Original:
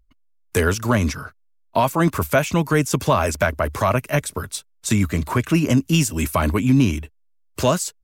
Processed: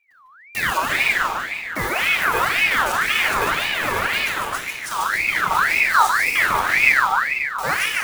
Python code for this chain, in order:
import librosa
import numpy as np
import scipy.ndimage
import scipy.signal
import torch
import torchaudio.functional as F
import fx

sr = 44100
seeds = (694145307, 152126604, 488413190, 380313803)

y = fx.block_float(x, sr, bits=3)
y = fx.high_shelf(y, sr, hz=11000.0, db=4.5)
y = fx.echo_feedback(y, sr, ms=149, feedback_pct=56, wet_db=-5)
y = fx.room_shoebox(y, sr, seeds[0], volume_m3=3700.0, walls='mixed', distance_m=4.8)
y = fx.ring_lfo(y, sr, carrier_hz=1700.0, swing_pct=40, hz=1.9)
y = y * 10.0 ** (-8.5 / 20.0)